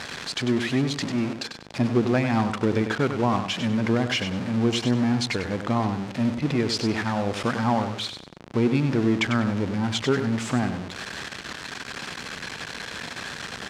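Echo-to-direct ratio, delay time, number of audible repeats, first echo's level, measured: -8.0 dB, 97 ms, 3, -8.5 dB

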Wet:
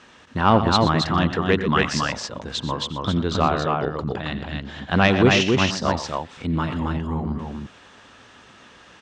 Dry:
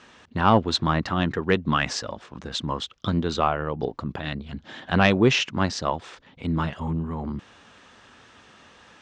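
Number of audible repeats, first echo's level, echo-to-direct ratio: 3, -18.0 dB, -2.5 dB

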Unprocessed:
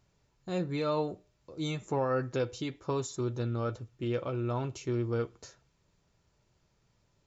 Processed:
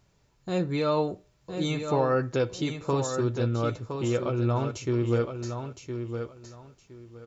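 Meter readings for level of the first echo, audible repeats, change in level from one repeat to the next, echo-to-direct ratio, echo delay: -7.5 dB, 3, -13.5 dB, -7.5 dB, 1014 ms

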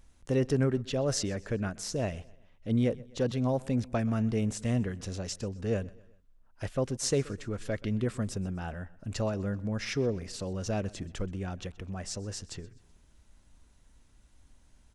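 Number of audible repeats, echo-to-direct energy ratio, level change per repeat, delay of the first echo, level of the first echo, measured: 2, -21.0 dB, -7.0 dB, 127 ms, -22.0 dB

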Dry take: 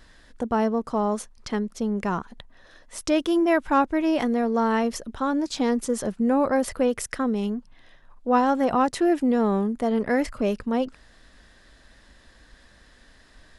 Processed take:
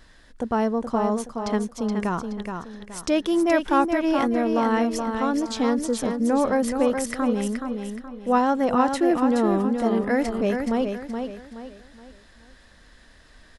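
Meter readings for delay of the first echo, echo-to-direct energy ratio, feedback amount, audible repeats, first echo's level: 423 ms, -5.5 dB, 36%, 4, -6.0 dB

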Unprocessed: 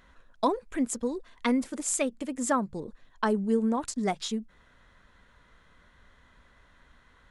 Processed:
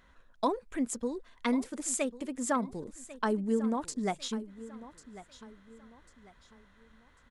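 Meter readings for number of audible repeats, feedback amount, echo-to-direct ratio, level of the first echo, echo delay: 3, 35%, -16.0 dB, -16.5 dB, 1096 ms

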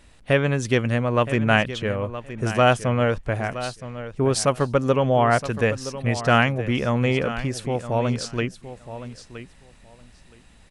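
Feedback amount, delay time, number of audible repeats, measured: 16%, 969 ms, 2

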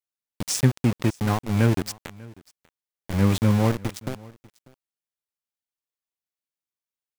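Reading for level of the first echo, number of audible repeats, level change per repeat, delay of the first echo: -23.0 dB, 1, no regular repeats, 593 ms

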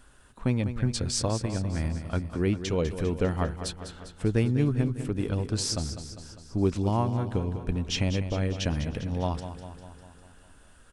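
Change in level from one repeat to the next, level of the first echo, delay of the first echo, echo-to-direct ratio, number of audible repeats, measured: -4.5 dB, -10.5 dB, 200 ms, -8.5 dB, 6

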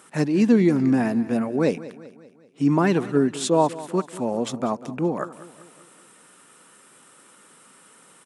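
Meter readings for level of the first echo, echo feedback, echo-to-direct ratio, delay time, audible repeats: -17.0 dB, 52%, -15.5 dB, 193 ms, 4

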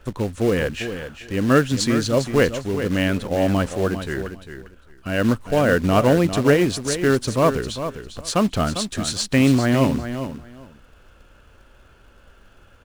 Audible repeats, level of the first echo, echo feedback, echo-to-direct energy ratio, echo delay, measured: 2, -10.0 dB, 17%, -10.0 dB, 400 ms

